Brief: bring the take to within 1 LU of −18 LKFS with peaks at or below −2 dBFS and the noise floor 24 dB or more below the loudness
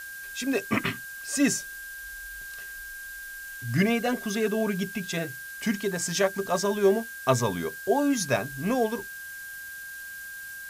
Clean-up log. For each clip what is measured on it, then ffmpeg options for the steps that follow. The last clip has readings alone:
interfering tone 1,600 Hz; level of the tone −38 dBFS; background noise floor −40 dBFS; target noise floor −53 dBFS; integrated loudness −28.5 LKFS; sample peak −10.0 dBFS; target loudness −18.0 LKFS
→ -af "bandreject=frequency=1600:width=30"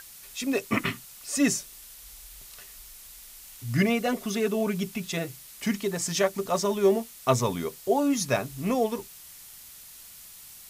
interfering tone none found; background noise floor −47 dBFS; target noise floor −52 dBFS
→ -af "afftdn=noise_reduction=6:noise_floor=-47"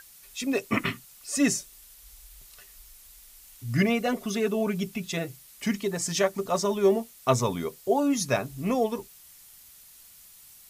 background noise floor −52 dBFS; integrated loudness −27.5 LKFS; sample peak −10.5 dBFS; target loudness −18.0 LKFS
→ -af "volume=9.5dB,alimiter=limit=-2dB:level=0:latency=1"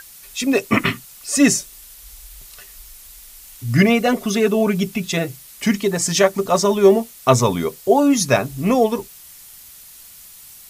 integrated loudness −18.0 LKFS; sample peak −2.0 dBFS; background noise floor −43 dBFS

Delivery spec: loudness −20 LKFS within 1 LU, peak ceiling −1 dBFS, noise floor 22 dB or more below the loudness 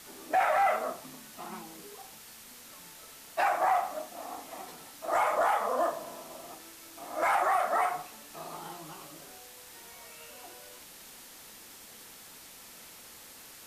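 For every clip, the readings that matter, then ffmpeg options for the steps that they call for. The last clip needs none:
background noise floor −51 dBFS; target noise floor −52 dBFS; integrated loudness −30.0 LKFS; sample peak −18.0 dBFS; target loudness −20.0 LKFS
→ -af "afftdn=noise_reduction=6:noise_floor=-51"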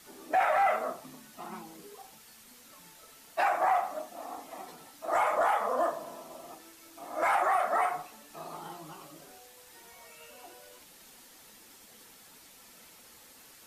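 background noise floor −55 dBFS; integrated loudness −29.5 LKFS; sample peak −18.5 dBFS; target loudness −20.0 LKFS
→ -af "volume=9.5dB"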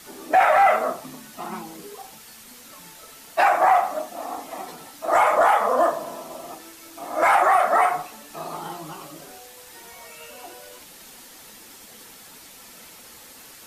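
integrated loudness −20.0 LKFS; sample peak −9.0 dBFS; background noise floor −46 dBFS

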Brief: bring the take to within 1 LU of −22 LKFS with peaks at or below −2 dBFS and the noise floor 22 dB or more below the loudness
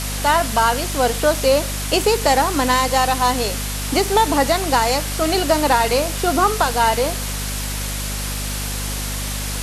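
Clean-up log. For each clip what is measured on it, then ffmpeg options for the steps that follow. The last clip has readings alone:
mains hum 50 Hz; hum harmonics up to 250 Hz; level of the hum −24 dBFS; background noise floor −25 dBFS; target noise floor −41 dBFS; integrated loudness −18.5 LKFS; sample peak −2.5 dBFS; target loudness −22.0 LKFS
→ -af "bandreject=frequency=50:width_type=h:width=4,bandreject=frequency=100:width_type=h:width=4,bandreject=frequency=150:width_type=h:width=4,bandreject=frequency=200:width_type=h:width=4,bandreject=frequency=250:width_type=h:width=4"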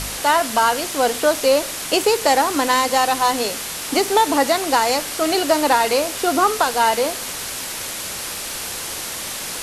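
mains hum none found; background noise floor −29 dBFS; target noise floor −41 dBFS
→ -af "afftdn=noise_reduction=12:noise_floor=-29"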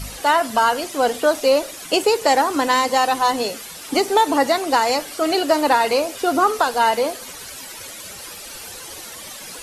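background noise floor −36 dBFS; target noise floor −41 dBFS
→ -af "afftdn=noise_reduction=6:noise_floor=-36"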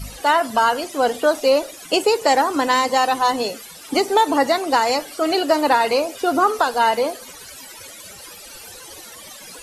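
background noise floor −40 dBFS; target noise floor −41 dBFS
→ -af "afftdn=noise_reduction=6:noise_floor=-40"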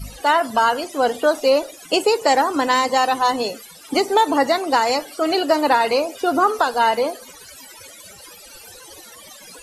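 background noise floor −43 dBFS; integrated loudness −19.0 LKFS; sample peak −3.5 dBFS; target loudness −22.0 LKFS
→ -af "volume=-3dB"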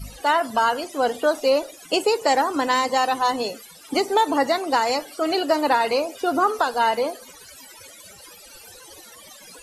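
integrated loudness −22.0 LKFS; sample peak −6.5 dBFS; background noise floor −46 dBFS

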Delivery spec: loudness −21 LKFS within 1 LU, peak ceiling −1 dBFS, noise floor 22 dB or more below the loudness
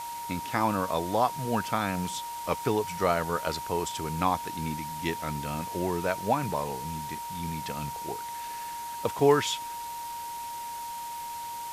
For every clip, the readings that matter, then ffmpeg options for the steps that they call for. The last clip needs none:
interfering tone 940 Hz; level of the tone −35 dBFS; background noise floor −37 dBFS; target noise floor −53 dBFS; integrated loudness −30.5 LKFS; sample peak −9.0 dBFS; target loudness −21.0 LKFS
→ -af "bandreject=frequency=940:width=30"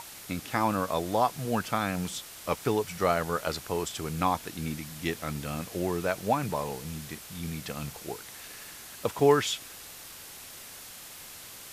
interfering tone none found; background noise floor −46 dBFS; target noise floor −53 dBFS
→ -af "afftdn=noise_reduction=7:noise_floor=-46"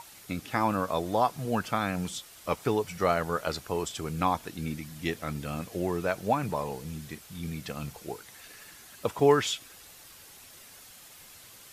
background noise floor −51 dBFS; target noise floor −53 dBFS
→ -af "afftdn=noise_reduction=6:noise_floor=-51"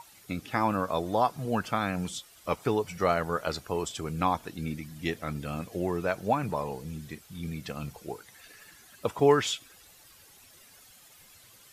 background noise floor −56 dBFS; integrated loudness −30.5 LKFS; sample peak −9.0 dBFS; target loudness −21.0 LKFS
→ -af "volume=9.5dB,alimiter=limit=-1dB:level=0:latency=1"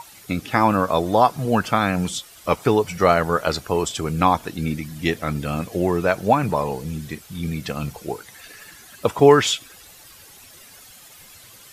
integrated loudness −21.0 LKFS; sample peak −1.0 dBFS; background noise floor −46 dBFS

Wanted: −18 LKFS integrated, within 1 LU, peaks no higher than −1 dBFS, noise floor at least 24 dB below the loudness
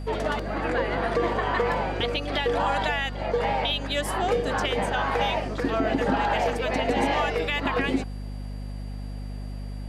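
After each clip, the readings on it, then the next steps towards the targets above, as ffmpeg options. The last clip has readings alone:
mains hum 50 Hz; hum harmonics up to 250 Hz; level of the hum −31 dBFS; interfering tone 4,700 Hz; level of the tone −56 dBFS; integrated loudness −25.5 LKFS; sample peak −11.5 dBFS; target loudness −18.0 LKFS
→ -af "bandreject=frequency=50:width_type=h:width=6,bandreject=frequency=100:width_type=h:width=6,bandreject=frequency=150:width_type=h:width=6,bandreject=frequency=200:width_type=h:width=6,bandreject=frequency=250:width_type=h:width=6"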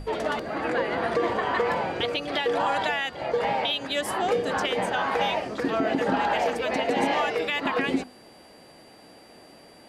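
mains hum none found; interfering tone 4,700 Hz; level of the tone −56 dBFS
→ -af "bandreject=frequency=4700:width=30"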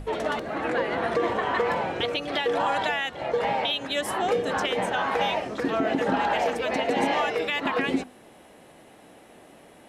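interfering tone none found; integrated loudness −26.0 LKFS; sample peak −12.0 dBFS; target loudness −18.0 LKFS
→ -af "volume=8dB"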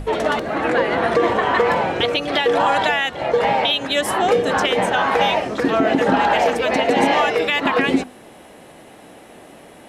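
integrated loudness −18.0 LKFS; sample peak −4.0 dBFS; background noise floor −44 dBFS

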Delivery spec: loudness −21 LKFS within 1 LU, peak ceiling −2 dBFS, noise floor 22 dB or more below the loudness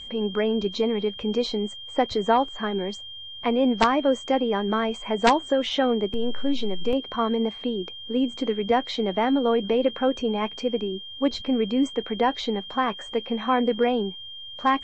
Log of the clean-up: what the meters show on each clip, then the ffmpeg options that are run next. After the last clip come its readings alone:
interfering tone 3,200 Hz; level of the tone −37 dBFS; integrated loudness −25.0 LKFS; sample peak −4.0 dBFS; target loudness −21.0 LKFS
→ -af "bandreject=frequency=3200:width=30"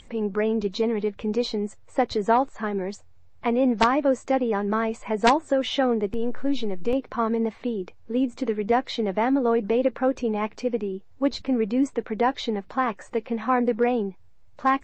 interfering tone none found; integrated loudness −25.0 LKFS; sample peak −4.5 dBFS; target loudness −21.0 LKFS
→ -af "volume=4dB,alimiter=limit=-2dB:level=0:latency=1"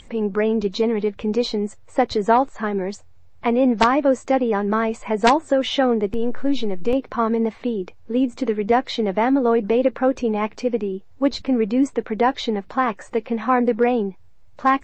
integrated loudness −21.0 LKFS; sample peak −2.0 dBFS; background noise floor −44 dBFS

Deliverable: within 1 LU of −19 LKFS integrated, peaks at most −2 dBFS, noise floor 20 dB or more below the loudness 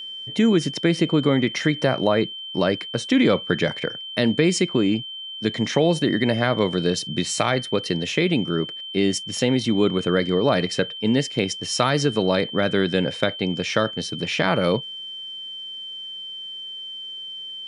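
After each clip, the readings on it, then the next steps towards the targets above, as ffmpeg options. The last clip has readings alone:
interfering tone 3,100 Hz; level of the tone −32 dBFS; integrated loudness −22.5 LKFS; sample peak −3.5 dBFS; target loudness −19.0 LKFS
→ -af "bandreject=frequency=3100:width=30"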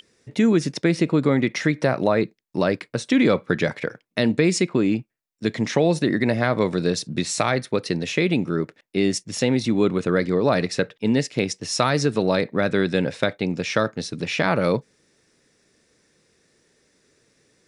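interfering tone none found; integrated loudness −22.5 LKFS; sample peak −3.5 dBFS; target loudness −19.0 LKFS
→ -af "volume=3.5dB,alimiter=limit=-2dB:level=0:latency=1"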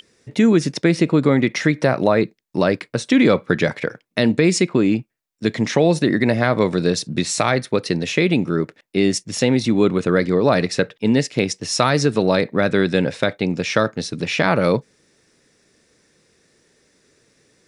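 integrated loudness −19.0 LKFS; sample peak −2.0 dBFS; background noise floor −65 dBFS

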